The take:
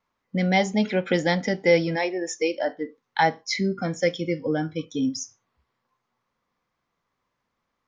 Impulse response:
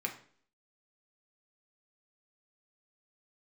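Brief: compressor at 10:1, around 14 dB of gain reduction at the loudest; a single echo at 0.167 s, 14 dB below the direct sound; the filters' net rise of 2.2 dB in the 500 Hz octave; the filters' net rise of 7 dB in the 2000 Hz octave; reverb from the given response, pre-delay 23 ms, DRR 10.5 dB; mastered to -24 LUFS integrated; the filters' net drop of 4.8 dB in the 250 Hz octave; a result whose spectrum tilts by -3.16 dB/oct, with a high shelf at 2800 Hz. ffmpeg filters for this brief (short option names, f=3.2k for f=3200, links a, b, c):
-filter_complex "[0:a]equalizer=f=250:t=o:g=-9,equalizer=f=500:t=o:g=4,equalizer=f=2k:t=o:g=5.5,highshelf=f=2.8k:g=5.5,acompressor=threshold=-25dB:ratio=10,aecho=1:1:167:0.2,asplit=2[a][b];[1:a]atrim=start_sample=2205,adelay=23[c];[b][c]afir=irnorm=-1:irlink=0,volume=-13.5dB[d];[a][d]amix=inputs=2:normalize=0,volume=6dB"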